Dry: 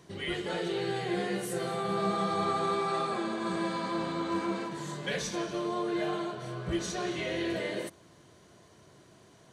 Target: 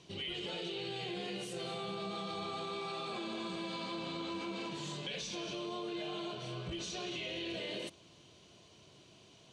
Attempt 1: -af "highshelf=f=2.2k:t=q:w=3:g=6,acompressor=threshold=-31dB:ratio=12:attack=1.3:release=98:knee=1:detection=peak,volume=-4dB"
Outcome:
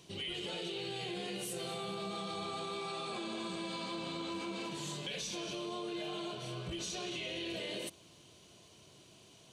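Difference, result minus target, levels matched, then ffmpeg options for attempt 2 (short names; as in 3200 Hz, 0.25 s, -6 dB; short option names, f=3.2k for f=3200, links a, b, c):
8000 Hz band +4.0 dB
-af "highshelf=f=2.2k:t=q:w=3:g=6,acompressor=threshold=-31dB:ratio=12:attack=1.3:release=98:knee=1:detection=peak,lowpass=6k,volume=-4dB"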